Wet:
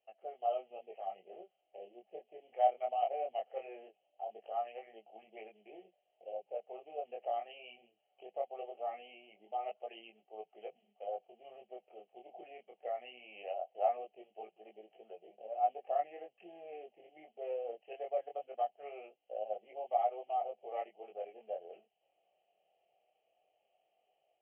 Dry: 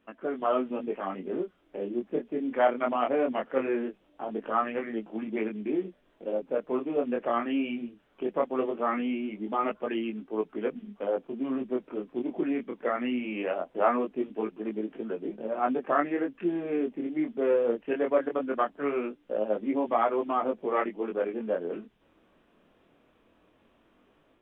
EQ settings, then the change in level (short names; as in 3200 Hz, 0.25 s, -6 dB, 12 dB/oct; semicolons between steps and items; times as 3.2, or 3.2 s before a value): double band-pass 1500 Hz, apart 2 oct; fixed phaser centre 1000 Hz, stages 6; +1.5 dB